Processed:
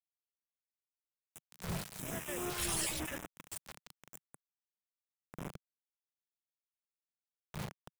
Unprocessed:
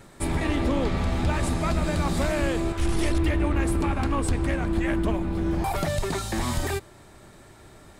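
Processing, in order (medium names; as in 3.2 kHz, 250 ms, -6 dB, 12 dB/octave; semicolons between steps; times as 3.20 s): random holes in the spectrogram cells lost 31%; Doppler pass-by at 2.72 s, 25 m/s, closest 3.6 m; wind noise 170 Hz -37 dBFS; RIAA curve recording; echo from a far wall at 190 m, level -24 dB; reverberation RT60 0.65 s, pre-delay 12 ms, DRR 17 dB; bit crusher 6-bit; peaking EQ 160 Hz +6.5 dB 1.1 oct; saturation -28 dBFS, distortion -13 dB; LFO notch square 1 Hz 280–4400 Hz; trim -1.5 dB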